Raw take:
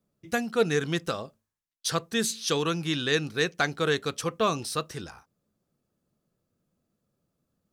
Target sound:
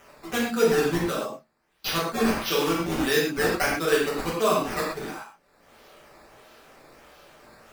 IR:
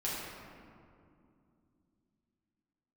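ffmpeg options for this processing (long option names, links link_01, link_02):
-filter_complex "[0:a]highpass=frequency=180:width=0.5412,highpass=frequency=180:width=1.3066,acrossover=split=500[link_01][link_02];[link_02]acompressor=mode=upward:threshold=-30dB:ratio=2.5[link_03];[link_01][link_03]amix=inputs=2:normalize=0,acrusher=samples=10:mix=1:aa=0.000001:lfo=1:lforange=10:lforate=1.5[link_04];[1:a]atrim=start_sample=2205,atrim=end_sample=6174[link_05];[link_04][link_05]afir=irnorm=-1:irlink=0"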